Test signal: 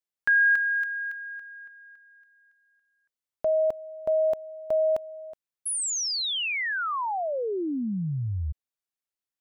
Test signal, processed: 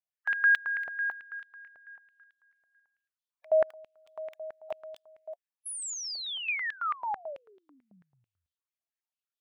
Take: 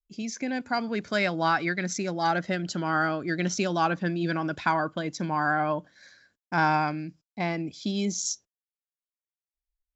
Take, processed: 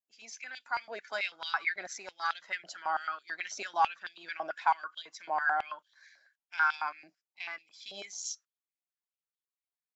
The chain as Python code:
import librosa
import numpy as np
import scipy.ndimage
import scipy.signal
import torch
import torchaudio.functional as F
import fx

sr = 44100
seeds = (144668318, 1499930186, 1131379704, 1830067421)

y = fx.spec_quant(x, sr, step_db=15)
y = fx.filter_held_highpass(y, sr, hz=9.1, low_hz=670.0, high_hz=3400.0)
y = F.gain(torch.from_numpy(y), -9.0).numpy()